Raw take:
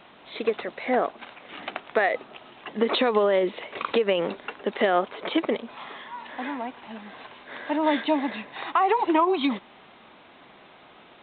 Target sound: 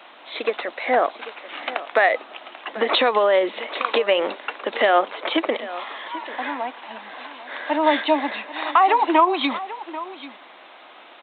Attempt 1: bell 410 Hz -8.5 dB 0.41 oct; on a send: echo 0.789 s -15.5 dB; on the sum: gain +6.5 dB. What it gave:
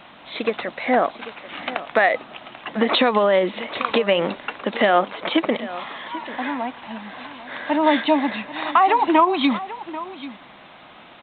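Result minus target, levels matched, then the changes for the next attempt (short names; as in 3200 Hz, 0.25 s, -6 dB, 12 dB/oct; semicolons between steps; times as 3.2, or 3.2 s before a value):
250 Hz band +4.5 dB
add first: HPF 320 Hz 24 dB/oct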